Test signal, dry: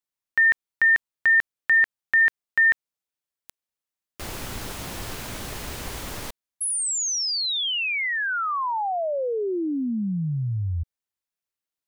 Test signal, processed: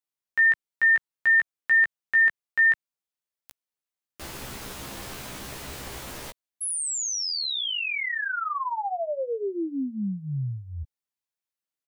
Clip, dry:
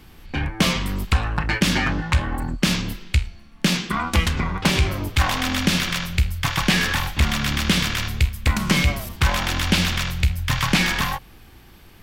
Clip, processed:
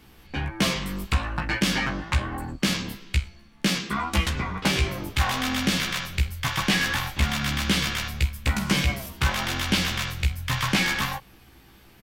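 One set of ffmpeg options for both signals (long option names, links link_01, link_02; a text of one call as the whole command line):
ffmpeg -i in.wav -filter_complex "[0:a]lowshelf=frequency=65:gain=-7,asplit=2[link_01][link_02];[link_02]adelay=15,volume=-3dB[link_03];[link_01][link_03]amix=inputs=2:normalize=0,volume=-5dB" out.wav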